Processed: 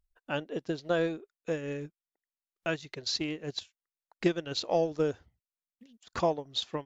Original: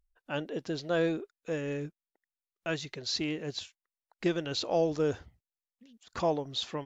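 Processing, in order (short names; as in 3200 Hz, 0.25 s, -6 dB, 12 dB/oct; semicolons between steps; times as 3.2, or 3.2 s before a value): transient shaper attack +5 dB, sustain -8 dB; gain -1.5 dB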